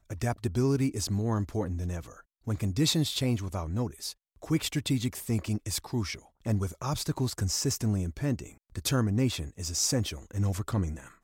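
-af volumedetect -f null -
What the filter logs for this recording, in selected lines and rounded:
mean_volume: -30.2 dB
max_volume: -14.4 dB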